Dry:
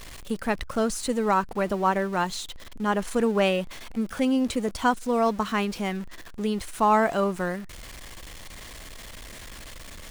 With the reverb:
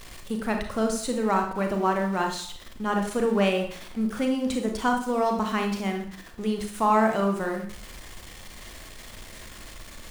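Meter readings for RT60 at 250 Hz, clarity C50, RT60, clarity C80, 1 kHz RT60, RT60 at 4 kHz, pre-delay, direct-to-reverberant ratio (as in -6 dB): 0.50 s, 6.5 dB, 0.55 s, 10.0 dB, 0.60 s, 0.45 s, 30 ms, 3.0 dB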